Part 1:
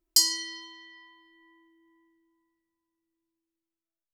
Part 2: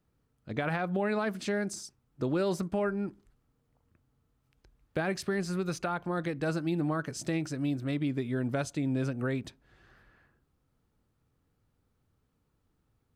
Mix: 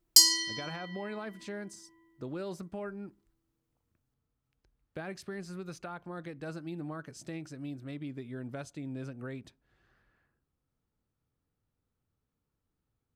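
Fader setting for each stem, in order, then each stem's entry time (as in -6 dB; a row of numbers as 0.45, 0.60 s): +2.0, -9.5 dB; 0.00, 0.00 s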